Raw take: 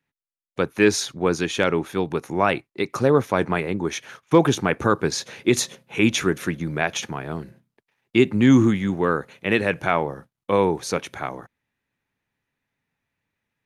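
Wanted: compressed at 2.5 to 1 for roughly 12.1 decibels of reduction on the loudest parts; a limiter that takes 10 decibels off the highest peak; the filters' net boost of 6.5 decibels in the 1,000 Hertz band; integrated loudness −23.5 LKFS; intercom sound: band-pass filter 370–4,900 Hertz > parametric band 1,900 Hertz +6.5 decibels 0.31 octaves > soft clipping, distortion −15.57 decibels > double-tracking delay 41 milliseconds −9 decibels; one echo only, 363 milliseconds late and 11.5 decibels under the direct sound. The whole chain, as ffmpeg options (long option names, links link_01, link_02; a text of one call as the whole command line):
ffmpeg -i in.wav -filter_complex "[0:a]equalizer=frequency=1000:width_type=o:gain=8,acompressor=threshold=-28dB:ratio=2.5,alimiter=limit=-19.5dB:level=0:latency=1,highpass=370,lowpass=4900,equalizer=frequency=1900:width_type=o:width=0.31:gain=6.5,aecho=1:1:363:0.266,asoftclip=threshold=-25.5dB,asplit=2[link_01][link_02];[link_02]adelay=41,volume=-9dB[link_03];[link_01][link_03]amix=inputs=2:normalize=0,volume=12dB" out.wav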